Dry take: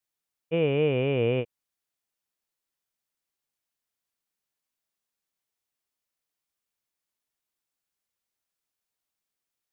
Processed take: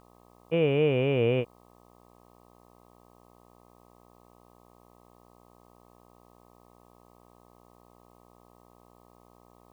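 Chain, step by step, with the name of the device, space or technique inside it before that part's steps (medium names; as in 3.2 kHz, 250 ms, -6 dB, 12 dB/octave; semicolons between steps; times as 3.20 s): video cassette with head-switching buzz (mains buzz 60 Hz, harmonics 21, -58 dBFS -1 dB/octave; white noise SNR 39 dB)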